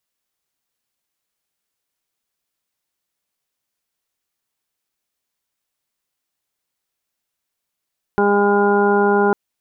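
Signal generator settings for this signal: steady additive tone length 1.15 s, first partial 203 Hz, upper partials 4.5/-9.5/0.5/-5/-19.5/-2.5 dB, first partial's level -19.5 dB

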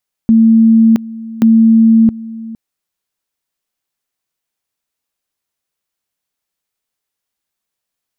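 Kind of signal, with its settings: two-level tone 225 Hz -4 dBFS, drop 19 dB, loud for 0.67 s, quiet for 0.46 s, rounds 2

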